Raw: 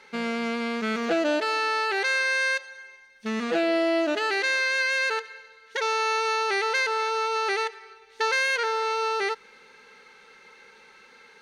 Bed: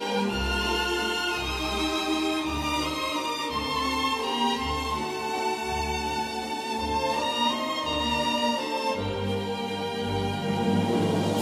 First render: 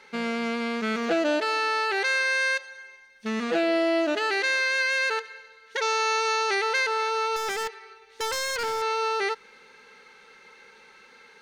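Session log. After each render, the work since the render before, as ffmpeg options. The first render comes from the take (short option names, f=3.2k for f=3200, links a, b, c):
-filter_complex "[0:a]asettb=1/sr,asplit=3[a][b][c];[a]atrim=end=5.824[d];[b]atrim=start=5.82:end=6.55,asetpts=PTS-STARTPTS,afade=t=in:d=0.004:c=qsin,afade=t=out:st=0.726:d=0.004:c=qsin,lowpass=f=7.5k:t=q:w=1.7[e];[c]atrim=start=6.546[f];[d][e]acrossfade=d=0.004:c1=hsin:c2=qsin[g];[g][f]acrossfade=d=0.004:c1=qsin:c2=hsin,asettb=1/sr,asplit=3[h][i][j];[h]atrim=end=7.364[k];[i]atrim=start=7.36:end=8.82,asetpts=PTS-STARTPTS,afade=t=in:d=0.004:c=qsin,afade=t=out:st=1.456:d=0.004:c=qsin,aeval=exprs='0.0668*(abs(mod(val(0)/0.0668+3,4)-2)-1)':c=same[l];[j]atrim=start=8.816[m];[k][l]acrossfade=d=0.004:c1=hsin:c2=qsin[n];[n][m]acrossfade=d=0.004:c1=qsin:c2=hsin"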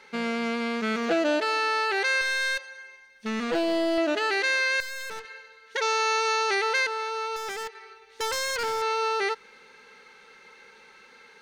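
-filter_complex "[0:a]asettb=1/sr,asplit=3[a][b][c];[a]atrim=end=2.214[d];[b]atrim=start=2.21:end=3.98,asetpts=PTS-STARTPTS,afade=t=in:d=0.004:c=qsin,afade=t=out:st=1.766:d=0.004:c=qsin,aeval=exprs='clip(val(0),-1,0.0501)':c=same[e];[c]atrim=start=3.976[f];[d][e]acrossfade=d=0.004:c1=hsin:c2=qsin[g];[g][f]acrossfade=d=0.004:c1=qsin:c2=hsin,asettb=1/sr,asplit=3[h][i][j];[h]atrim=end=4.804[k];[i]atrim=start=4.8:end=5.25,asetpts=PTS-STARTPTS,afade=t=in:d=0.004:c=qsin,afade=t=out:st=0.446:d=0.004:c=qsin,aeval=exprs='(tanh(56.2*val(0)+0.7)-tanh(0.7))/56.2':c=same[l];[j]atrim=start=5.246[m];[k][l]acrossfade=d=0.004:c1=hsin:c2=qsin[n];[n][m]acrossfade=d=0.004:c1=qsin:c2=hsin,asplit=3[o][p][q];[o]atrim=end=6.872[r];[p]atrim=start=6.868:end=7.752,asetpts=PTS-STARTPTS,volume=-4.5dB[s];[q]atrim=start=7.748[t];[r][s]acrossfade=d=0.004:c1=hsin:c2=hsin[u];[u][t]acrossfade=d=0.004:c1=hsin:c2=hsin"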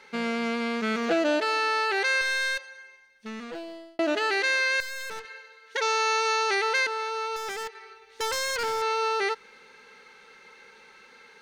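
-filter_complex "[0:a]asettb=1/sr,asplit=3[a][b][c];[a]atrim=end=5.294[d];[b]atrim=start=5.29:end=6.87,asetpts=PTS-STARTPTS,afade=t=in:d=0.004:c=qsin,afade=t=out:st=1.576:d=0.004:c=qsin,highpass=240[e];[c]atrim=start=6.866[f];[d][e]acrossfade=d=0.004:c1=hsin:c2=qsin[g];[g][f]acrossfade=d=0.004:c1=qsin:c2=hsin,asplit=2[h][i];[h]atrim=end=3.99,asetpts=PTS-STARTPTS,afade=t=out:st=2.36:d=1.63[j];[i]atrim=start=3.99,asetpts=PTS-STARTPTS,afade=t=in:d=0.004:c=hsin[k];[j][k]concat=n=2:v=0:a=1"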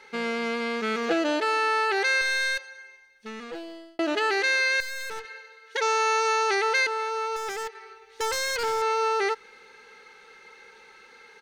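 -af "aecho=1:1:2.4:0.34"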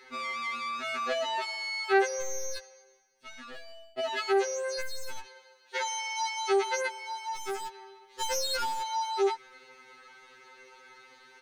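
-af "afftfilt=real='re*2.45*eq(mod(b,6),0)':imag='im*2.45*eq(mod(b,6),0)':win_size=2048:overlap=0.75"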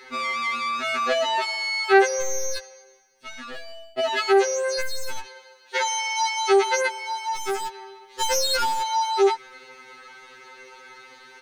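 -af "volume=8dB"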